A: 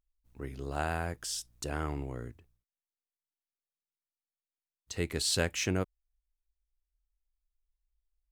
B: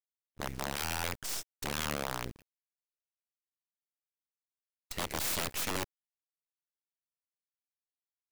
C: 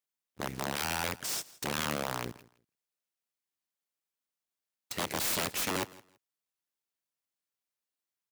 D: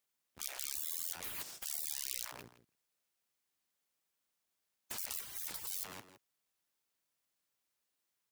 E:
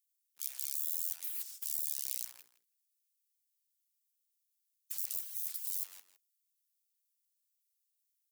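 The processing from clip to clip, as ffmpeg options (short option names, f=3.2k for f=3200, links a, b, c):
-af "acrusher=bits=6:dc=4:mix=0:aa=0.000001,aeval=exprs='(mod(28.2*val(0)+1,2)-1)/28.2':c=same,agate=range=-33dB:threshold=-48dB:ratio=3:detection=peak,volume=4dB"
-filter_complex "[0:a]highpass=120,asplit=2[a][b];[b]aeval=exprs='0.0316*(abs(mod(val(0)/0.0316+3,4)-2)-1)':c=same,volume=-5dB[c];[a][c]amix=inputs=2:normalize=0,aecho=1:1:165|330:0.0891|0.0178"
-af "afftfilt=real='re*lt(hypot(re,im),0.00891)':imag='im*lt(hypot(re,im),0.00891)':win_size=1024:overlap=0.75,volume=5.5dB"
-af "aderivative"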